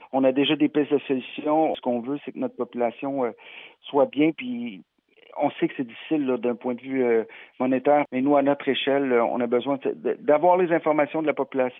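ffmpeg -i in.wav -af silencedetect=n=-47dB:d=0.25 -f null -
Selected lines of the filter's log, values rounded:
silence_start: 4.82
silence_end: 5.17 | silence_duration: 0.35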